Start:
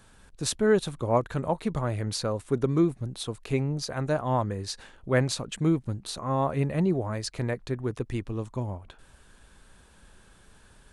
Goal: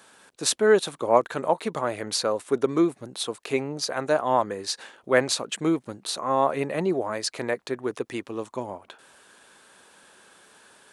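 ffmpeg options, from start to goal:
ffmpeg -i in.wav -af "highpass=360,volume=6dB" out.wav

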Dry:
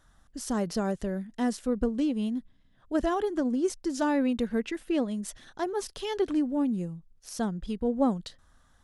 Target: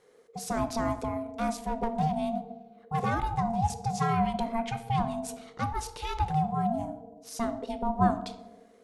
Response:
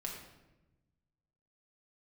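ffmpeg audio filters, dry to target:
-filter_complex "[0:a]asettb=1/sr,asplit=3[link_01][link_02][link_03];[link_01]atrim=end=1.474[link_04];[link_02]atrim=start=1.47:end=3.1,asetpts=PTS-STARTPTS,afade=type=in:duration=0.004:curve=qsin,afade=type=out:start_time=1.626:duration=0.004:curve=qsin,volume=22.5dB,asoftclip=hard,volume=-22.5dB[link_05];[link_03]atrim=start=3.096[link_06];[link_04][link_05]acrossfade=duration=0.004:curve1=hsin:curve2=qsin[link_07];[link_07][link_06]acrossfade=duration=0.004:curve1=qsin:curve2=hsin,asplit=2[link_08][link_09];[1:a]atrim=start_sample=2205,asetrate=66150,aresample=44100[link_10];[link_09][link_10]afir=irnorm=-1:irlink=0,volume=-1dB[link_11];[link_08][link_11]amix=inputs=2:normalize=0,aeval=exprs='val(0)*sin(2*PI*460*n/s)':channel_layout=same,volume=-1dB"

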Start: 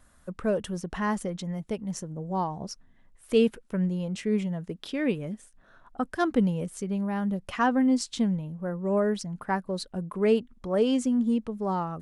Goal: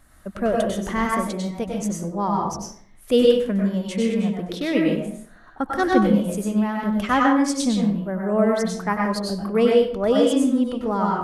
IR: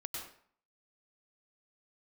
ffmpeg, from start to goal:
-filter_complex "[0:a]asetrate=47187,aresample=44100[link_01];[1:a]atrim=start_sample=2205[link_02];[link_01][link_02]afir=irnorm=-1:irlink=0,volume=8dB"

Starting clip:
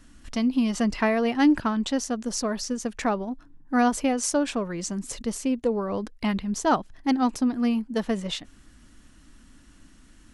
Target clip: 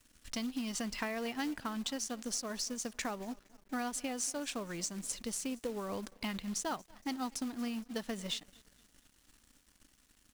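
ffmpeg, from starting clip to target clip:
ffmpeg -i in.wav -af "highshelf=frequency=2000:gain=11,acompressor=threshold=-25dB:ratio=6,aecho=1:1:233|466|699|932:0.0794|0.0421|0.0223|0.0118,acrusher=bits=4:mode=log:mix=0:aa=0.000001,aeval=exprs='sgn(val(0))*max(abs(val(0))-0.00335,0)':channel_layout=same,volume=-9dB" out.wav

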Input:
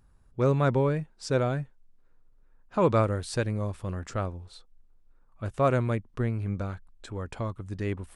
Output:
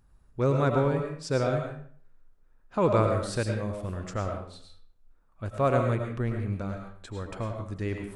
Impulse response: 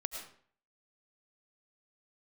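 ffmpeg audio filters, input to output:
-filter_complex "[1:a]atrim=start_sample=2205[link_01];[0:a][link_01]afir=irnorm=-1:irlink=0"

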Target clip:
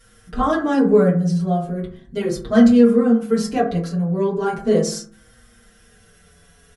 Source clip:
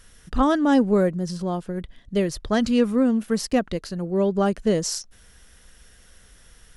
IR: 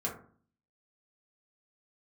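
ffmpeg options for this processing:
-filter_complex "[1:a]atrim=start_sample=2205[link_01];[0:a][link_01]afir=irnorm=-1:irlink=0,asplit=2[link_02][link_03];[link_03]adelay=6,afreqshift=-0.37[link_04];[link_02][link_04]amix=inputs=2:normalize=1,volume=1.5dB"

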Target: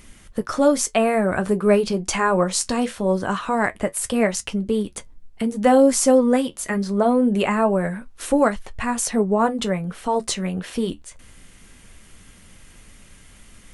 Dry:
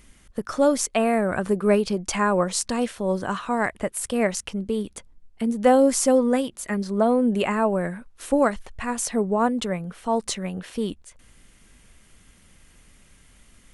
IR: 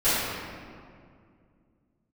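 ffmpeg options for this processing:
-filter_complex "[0:a]asplit=2[link_01][link_02];[link_02]acompressor=threshold=-33dB:ratio=6,volume=-2dB[link_03];[link_01][link_03]amix=inputs=2:normalize=0,flanger=delay=9:depth=3.1:regen=-56:speed=0.23:shape=triangular,volume=5.5dB"

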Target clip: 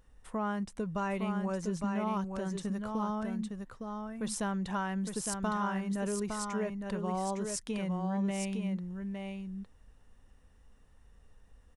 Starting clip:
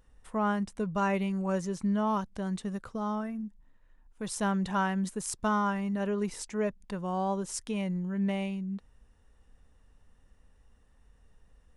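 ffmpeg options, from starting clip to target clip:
ffmpeg -i in.wav -filter_complex "[0:a]acompressor=threshold=-32dB:ratio=3,asplit=2[link_01][link_02];[link_02]aecho=0:1:860:0.562[link_03];[link_01][link_03]amix=inputs=2:normalize=0" out.wav

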